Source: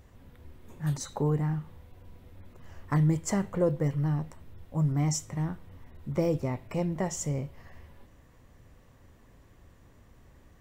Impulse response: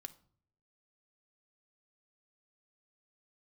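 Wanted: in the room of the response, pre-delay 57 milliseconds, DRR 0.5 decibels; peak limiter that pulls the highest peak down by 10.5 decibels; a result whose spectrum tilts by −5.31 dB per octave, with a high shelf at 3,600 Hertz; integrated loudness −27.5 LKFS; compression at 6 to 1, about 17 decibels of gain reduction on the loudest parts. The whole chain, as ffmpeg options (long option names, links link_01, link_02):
-filter_complex "[0:a]highshelf=frequency=3600:gain=8.5,acompressor=threshold=-40dB:ratio=6,alimiter=level_in=13.5dB:limit=-24dB:level=0:latency=1,volume=-13.5dB,asplit=2[link_01][link_02];[1:a]atrim=start_sample=2205,adelay=57[link_03];[link_02][link_03]afir=irnorm=-1:irlink=0,volume=5dB[link_04];[link_01][link_04]amix=inputs=2:normalize=0,volume=19dB"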